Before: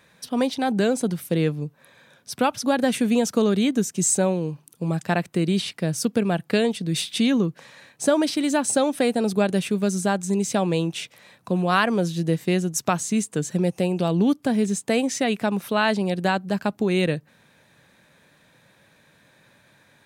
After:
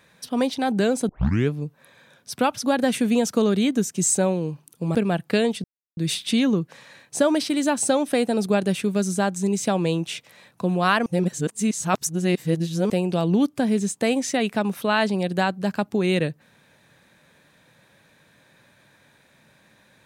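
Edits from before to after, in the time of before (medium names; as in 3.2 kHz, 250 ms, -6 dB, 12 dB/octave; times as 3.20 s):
1.09 s: tape start 0.41 s
4.95–6.15 s: delete
6.84 s: insert silence 0.33 s
11.93–13.77 s: reverse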